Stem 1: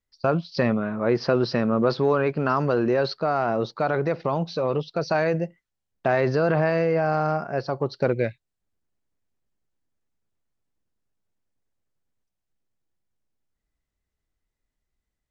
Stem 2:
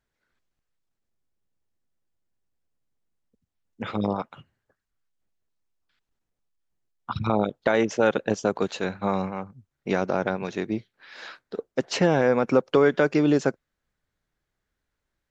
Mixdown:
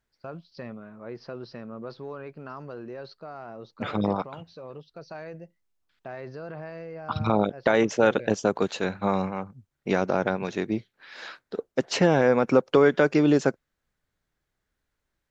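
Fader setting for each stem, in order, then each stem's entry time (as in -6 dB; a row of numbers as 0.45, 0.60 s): -17.0, +0.5 dB; 0.00, 0.00 s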